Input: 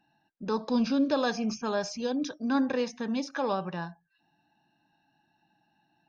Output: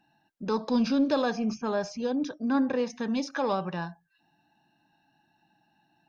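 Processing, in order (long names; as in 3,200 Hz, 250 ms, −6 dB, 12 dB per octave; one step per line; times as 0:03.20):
0:01.22–0:02.90: high-shelf EQ 2,300 Hz −8 dB
in parallel at −10.5 dB: soft clipping −27.5 dBFS, distortion −11 dB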